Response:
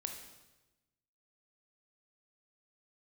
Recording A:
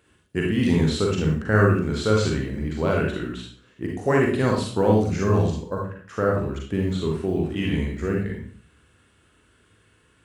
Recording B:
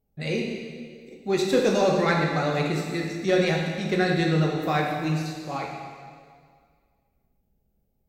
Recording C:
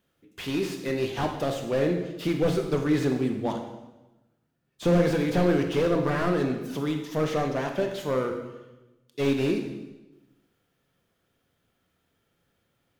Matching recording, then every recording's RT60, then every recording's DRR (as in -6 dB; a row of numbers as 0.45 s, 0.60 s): C; 0.45 s, 1.9 s, 1.1 s; -1.5 dB, -1.5 dB, 4.0 dB